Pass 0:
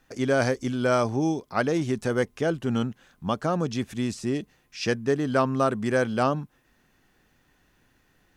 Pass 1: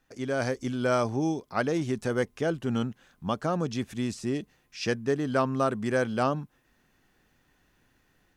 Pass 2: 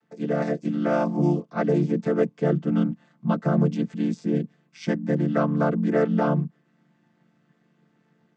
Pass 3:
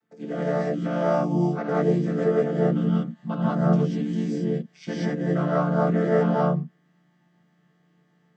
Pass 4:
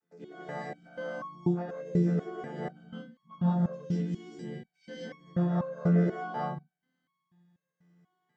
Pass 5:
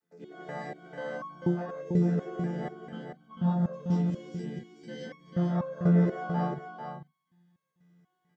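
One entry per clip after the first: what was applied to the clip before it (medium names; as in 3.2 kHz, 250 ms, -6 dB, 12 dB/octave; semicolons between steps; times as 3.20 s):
level rider gain up to 5 dB; trim -7.5 dB
vocoder on a held chord minor triad, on D3; trim +6 dB
gated-style reverb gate 220 ms rising, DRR -6.5 dB; trim -7 dB
resonator arpeggio 4.1 Hz 86–1100 Hz; trim +3 dB
delay 443 ms -6.5 dB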